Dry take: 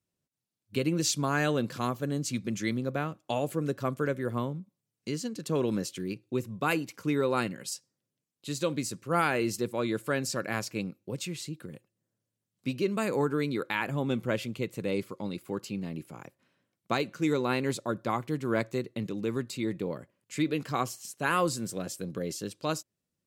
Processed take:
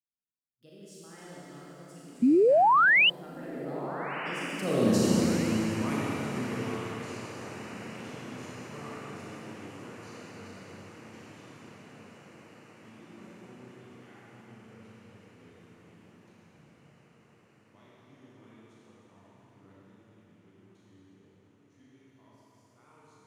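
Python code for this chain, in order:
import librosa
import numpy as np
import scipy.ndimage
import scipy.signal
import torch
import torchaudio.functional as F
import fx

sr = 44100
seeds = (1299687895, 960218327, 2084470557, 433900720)

p1 = fx.doppler_pass(x, sr, speed_mps=55, closest_m=9.6, pass_at_s=4.94)
p2 = fx.low_shelf(p1, sr, hz=120.0, db=9.5)
p3 = fx.rev_schroeder(p2, sr, rt60_s=3.5, comb_ms=28, drr_db=-7.5)
p4 = fx.spec_paint(p3, sr, seeds[0], shape='rise', start_s=2.22, length_s=0.88, low_hz=230.0, high_hz=3100.0, level_db=-20.0)
y = p4 + fx.echo_diffused(p4, sr, ms=1430, feedback_pct=67, wet_db=-15, dry=0)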